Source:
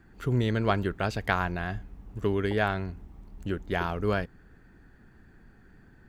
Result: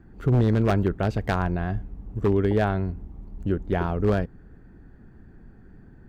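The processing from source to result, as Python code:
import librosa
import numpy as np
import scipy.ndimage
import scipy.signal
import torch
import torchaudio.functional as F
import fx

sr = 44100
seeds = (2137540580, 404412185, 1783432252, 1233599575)

y = fx.tilt_shelf(x, sr, db=7.5, hz=1100.0)
y = 10.0 ** (-13.5 / 20.0) * (np.abs((y / 10.0 ** (-13.5 / 20.0) + 3.0) % 4.0 - 2.0) - 1.0)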